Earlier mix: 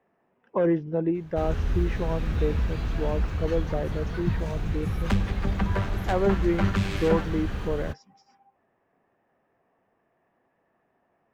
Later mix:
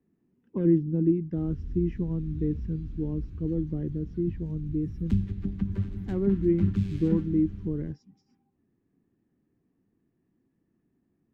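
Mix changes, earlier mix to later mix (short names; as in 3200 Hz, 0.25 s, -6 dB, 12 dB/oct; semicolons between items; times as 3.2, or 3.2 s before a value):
speech +5.0 dB; first sound -10.0 dB; master: add EQ curve 310 Hz 0 dB, 620 Hz -27 dB, 3700 Hz -16 dB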